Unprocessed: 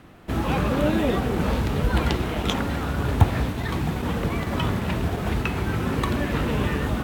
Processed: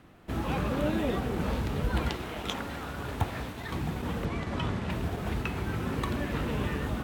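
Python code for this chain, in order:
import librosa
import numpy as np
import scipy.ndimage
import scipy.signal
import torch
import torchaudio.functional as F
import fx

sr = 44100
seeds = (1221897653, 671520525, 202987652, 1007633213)

y = fx.low_shelf(x, sr, hz=320.0, db=-7.5, at=(2.09, 3.72))
y = fx.lowpass(y, sr, hz=7800.0, slope=12, at=(4.25, 4.9))
y = y * librosa.db_to_amplitude(-7.0)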